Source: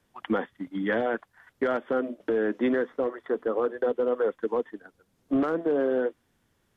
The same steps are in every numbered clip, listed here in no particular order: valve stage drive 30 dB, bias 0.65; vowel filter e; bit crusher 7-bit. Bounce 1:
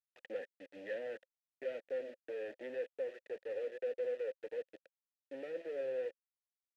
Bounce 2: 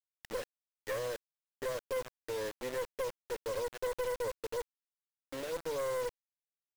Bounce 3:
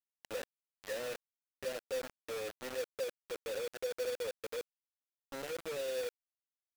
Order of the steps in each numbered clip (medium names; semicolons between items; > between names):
valve stage > bit crusher > vowel filter; vowel filter > valve stage > bit crusher; valve stage > vowel filter > bit crusher